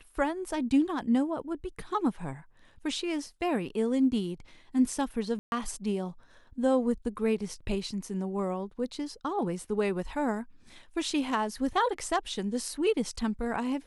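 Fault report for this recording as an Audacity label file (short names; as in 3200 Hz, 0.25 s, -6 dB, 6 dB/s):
5.390000	5.520000	gap 0.131 s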